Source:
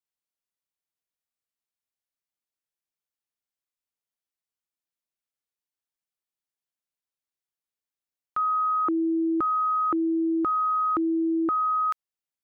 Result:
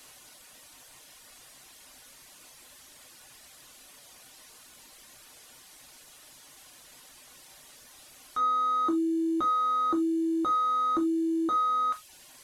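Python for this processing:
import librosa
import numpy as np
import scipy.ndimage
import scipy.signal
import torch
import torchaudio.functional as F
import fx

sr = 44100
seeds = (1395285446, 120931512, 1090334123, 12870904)

y = fx.delta_mod(x, sr, bps=64000, step_db=-43.0)
y = fx.rev_gated(y, sr, seeds[0], gate_ms=110, shape='falling', drr_db=0.0)
y = fx.dereverb_blind(y, sr, rt60_s=0.65)
y = y * 10.0 ** (-3.5 / 20.0)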